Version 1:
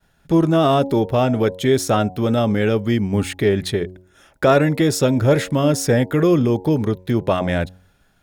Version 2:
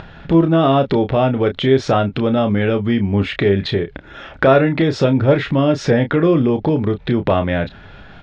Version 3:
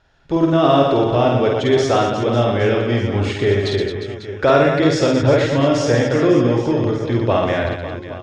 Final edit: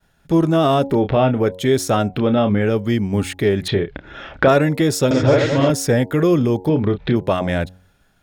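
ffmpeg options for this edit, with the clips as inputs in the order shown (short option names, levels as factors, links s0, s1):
-filter_complex "[1:a]asplit=4[s0][s1][s2][s3];[0:a]asplit=6[s4][s5][s6][s7][s8][s9];[s4]atrim=end=1.07[s10];[s0]atrim=start=0.83:end=1.54[s11];[s5]atrim=start=1.3:end=2.25[s12];[s1]atrim=start=2.01:end=2.77[s13];[s6]atrim=start=2.53:end=3.682[s14];[s2]atrim=start=3.678:end=4.482[s15];[s7]atrim=start=4.478:end=5.112[s16];[2:a]atrim=start=5.108:end=5.702[s17];[s8]atrim=start=5.698:end=6.692[s18];[s3]atrim=start=6.688:end=7.162[s19];[s9]atrim=start=7.158[s20];[s10][s11]acrossfade=d=0.24:c1=tri:c2=tri[s21];[s21][s12]acrossfade=d=0.24:c1=tri:c2=tri[s22];[s22][s13]acrossfade=d=0.24:c1=tri:c2=tri[s23];[s23][s14]acrossfade=d=0.24:c1=tri:c2=tri[s24];[s24][s15]acrossfade=d=0.004:c1=hsin:c2=hsin[s25];[s25][s16]acrossfade=d=0.004:c1=hsin:c2=hsin[s26];[s26][s17]acrossfade=d=0.004:c1=hsin:c2=hsin[s27];[s27][s18]acrossfade=d=0.004:c1=hsin:c2=hsin[s28];[s28][s19]acrossfade=d=0.004:c1=hsin:c2=hsin[s29];[s29][s20]acrossfade=d=0.004:c1=hsin:c2=hsin"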